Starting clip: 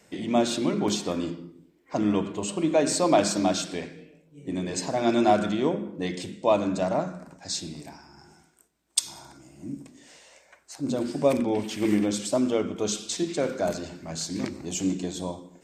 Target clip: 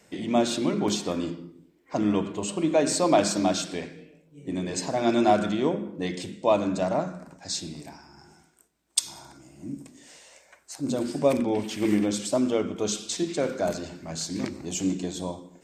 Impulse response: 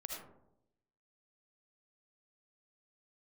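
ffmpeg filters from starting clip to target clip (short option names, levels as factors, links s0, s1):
-filter_complex "[0:a]asettb=1/sr,asplit=3[s0][s1][s2];[s0]atrim=end=9.784[s3];[s1]atrim=start=9.78:end=11.19,asetpts=PTS-STARTPTS,afade=t=in:d=0.004:c=qsin,afade=t=out:st=1.406:d=0.004:c=qsin,equalizer=f=11000:w=0.6:g=5[s4];[s2]atrim=start=11.186[s5];[s3][s4]acrossfade=d=0.004:c1=hsin:c2=qsin[s6];[s6][s5]acrossfade=d=0.004:c1=qsin:c2=hsin"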